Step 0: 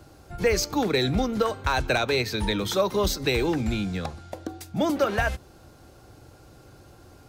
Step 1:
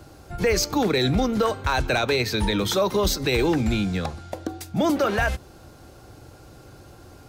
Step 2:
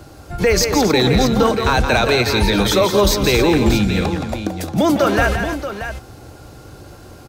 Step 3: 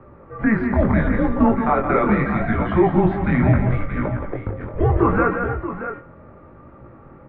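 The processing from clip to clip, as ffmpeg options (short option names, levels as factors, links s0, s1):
-af "alimiter=limit=0.141:level=0:latency=1:release=14,volume=1.58"
-af "aecho=1:1:171|270|630:0.447|0.251|0.316,volume=2"
-af "flanger=delay=17:depth=6.7:speed=0.74,highpass=f=240:t=q:w=0.5412,highpass=f=240:t=q:w=1.307,lowpass=f=2100:t=q:w=0.5176,lowpass=f=2100:t=q:w=0.7071,lowpass=f=2100:t=q:w=1.932,afreqshift=-220,bandreject=f=94.41:t=h:w=4,bandreject=f=188.82:t=h:w=4,bandreject=f=283.23:t=h:w=4,bandreject=f=377.64:t=h:w=4,bandreject=f=472.05:t=h:w=4,bandreject=f=566.46:t=h:w=4,bandreject=f=660.87:t=h:w=4,bandreject=f=755.28:t=h:w=4,bandreject=f=849.69:t=h:w=4,bandreject=f=944.1:t=h:w=4,bandreject=f=1038.51:t=h:w=4,bandreject=f=1132.92:t=h:w=4,bandreject=f=1227.33:t=h:w=4,bandreject=f=1321.74:t=h:w=4,bandreject=f=1416.15:t=h:w=4,bandreject=f=1510.56:t=h:w=4,bandreject=f=1604.97:t=h:w=4,bandreject=f=1699.38:t=h:w=4,bandreject=f=1793.79:t=h:w=4,bandreject=f=1888.2:t=h:w=4,bandreject=f=1982.61:t=h:w=4,bandreject=f=2077.02:t=h:w=4,bandreject=f=2171.43:t=h:w=4,bandreject=f=2265.84:t=h:w=4,bandreject=f=2360.25:t=h:w=4,bandreject=f=2454.66:t=h:w=4,bandreject=f=2549.07:t=h:w=4,bandreject=f=2643.48:t=h:w=4,bandreject=f=2737.89:t=h:w=4,bandreject=f=2832.3:t=h:w=4,bandreject=f=2926.71:t=h:w=4,bandreject=f=3021.12:t=h:w=4,bandreject=f=3115.53:t=h:w=4,bandreject=f=3209.94:t=h:w=4,volume=1.33"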